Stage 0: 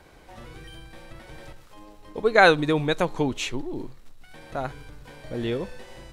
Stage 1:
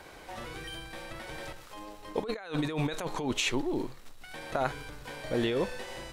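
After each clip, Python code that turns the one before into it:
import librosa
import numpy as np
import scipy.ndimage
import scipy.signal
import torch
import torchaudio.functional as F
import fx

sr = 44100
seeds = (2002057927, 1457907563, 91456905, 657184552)

y = fx.low_shelf(x, sr, hz=280.0, db=-9.0)
y = fx.over_compress(y, sr, threshold_db=-32.0, ratio=-1.0)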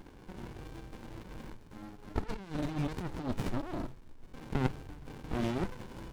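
y = fx.running_max(x, sr, window=65)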